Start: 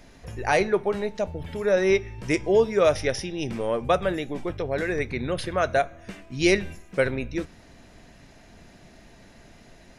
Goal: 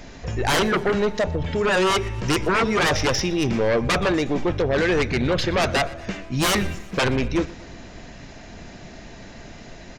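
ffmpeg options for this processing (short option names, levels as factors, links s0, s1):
-af "aresample=16000,aresample=44100,aeval=exprs='0.158*sin(PI/2*2*val(0)/0.158)':c=same,aecho=1:1:120|240|360|480|600:0.0891|0.0526|0.031|0.0183|0.0108"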